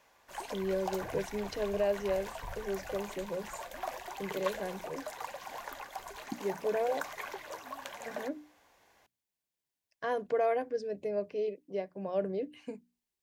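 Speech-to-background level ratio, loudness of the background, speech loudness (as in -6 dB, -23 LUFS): 7.5 dB, -43.0 LUFS, -35.5 LUFS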